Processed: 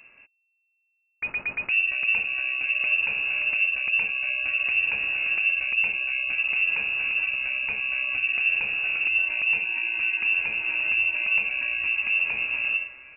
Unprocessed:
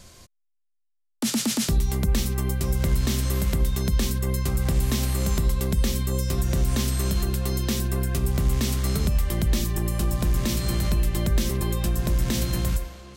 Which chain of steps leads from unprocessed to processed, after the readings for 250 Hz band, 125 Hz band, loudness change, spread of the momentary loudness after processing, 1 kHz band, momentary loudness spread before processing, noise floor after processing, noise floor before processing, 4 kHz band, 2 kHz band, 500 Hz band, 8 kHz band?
below −25 dB, below −30 dB, +2.0 dB, 4 LU, −7.0 dB, 2 LU, −74 dBFS, −72 dBFS, +0.5 dB, +18.5 dB, −16.5 dB, below −40 dB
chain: voice inversion scrambler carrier 2,700 Hz
level −4 dB

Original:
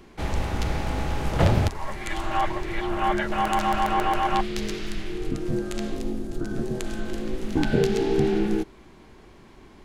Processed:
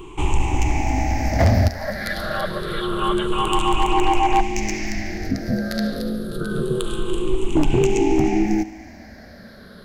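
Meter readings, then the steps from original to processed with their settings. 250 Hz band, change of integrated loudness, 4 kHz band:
+5.5 dB, +4.5 dB, +6.0 dB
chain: rippled gain that drifts along the octave scale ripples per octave 0.67, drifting −0.27 Hz, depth 20 dB
dynamic equaliser 1,300 Hz, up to −5 dB, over −32 dBFS, Q 1
in parallel at −1.5 dB: downward compressor 4 to 1, threshold −31 dBFS, peak gain reduction 18 dB
on the sum: hard clipping −10 dBFS, distortion −18 dB
feedback echo with a high-pass in the loop 72 ms, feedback 77%, high-pass 230 Hz, level −17 dB

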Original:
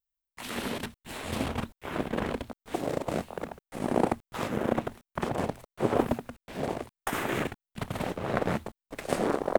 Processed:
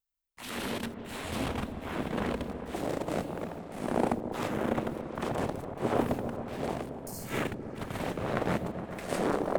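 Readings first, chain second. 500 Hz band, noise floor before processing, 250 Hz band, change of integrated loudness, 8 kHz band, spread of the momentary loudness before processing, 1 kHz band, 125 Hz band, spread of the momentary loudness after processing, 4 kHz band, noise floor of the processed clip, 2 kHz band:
−2.0 dB, below −85 dBFS, −1.0 dB, −1.5 dB, −1.5 dB, 11 LU, −1.5 dB, −0.5 dB, 9 LU, −1.5 dB, −44 dBFS, −2.0 dB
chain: transient designer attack −6 dB, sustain 0 dB
healed spectral selection 0:07.02–0:07.33, 230–4,100 Hz both
echo whose low-pass opens from repeat to repeat 139 ms, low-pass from 400 Hz, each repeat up 1 octave, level −6 dB

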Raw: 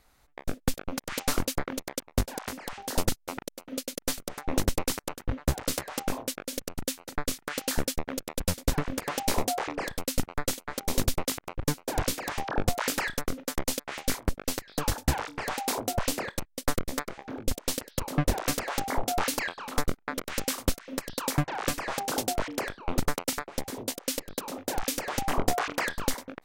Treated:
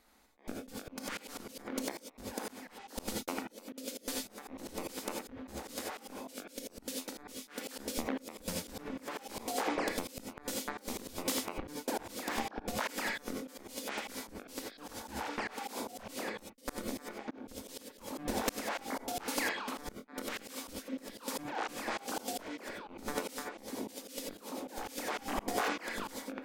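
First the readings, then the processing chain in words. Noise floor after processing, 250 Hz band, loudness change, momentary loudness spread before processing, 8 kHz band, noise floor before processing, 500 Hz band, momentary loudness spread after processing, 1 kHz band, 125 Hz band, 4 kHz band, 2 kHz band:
−58 dBFS, −7.0 dB, −8.0 dB, 7 LU, −9.5 dB, −65 dBFS, −7.0 dB, 10 LU, −7.0 dB, −19.0 dB, −8.0 dB, −6.0 dB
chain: low shelf with overshoot 170 Hz −7.5 dB, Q 3
reverb whose tail is shaped and stops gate 110 ms rising, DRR 2.5 dB
volume swells 272 ms
level −3 dB

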